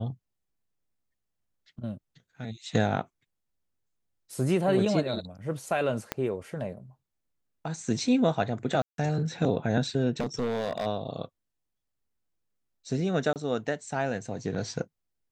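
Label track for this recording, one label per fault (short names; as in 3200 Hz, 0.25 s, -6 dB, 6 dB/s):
6.120000	6.120000	pop -13 dBFS
8.820000	8.980000	gap 0.162 s
10.200000	10.870000	clipped -25 dBFS
13.330000	13.360000	gap 28 ms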